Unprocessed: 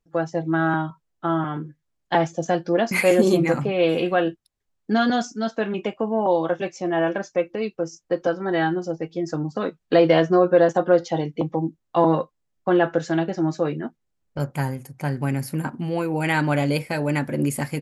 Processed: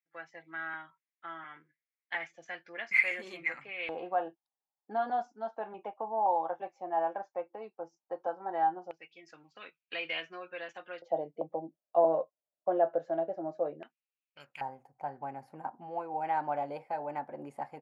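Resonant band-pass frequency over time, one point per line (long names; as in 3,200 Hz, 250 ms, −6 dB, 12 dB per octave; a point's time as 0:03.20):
resonant band-pass, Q 5.6
2,100 Hz
from 0:03.89 830 Hz
from 0:08.91 2,500 Hz
from 0:11.02 630 Hz
from 0:13.83 2,600 Hz
from 0:14.61 790 Hz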